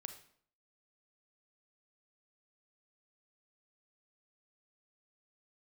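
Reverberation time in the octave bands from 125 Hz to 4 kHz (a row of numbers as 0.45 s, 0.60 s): 0.65 s, 0.65 s, 0.60 s, 0.55 s, 0.50 s, 0.50 s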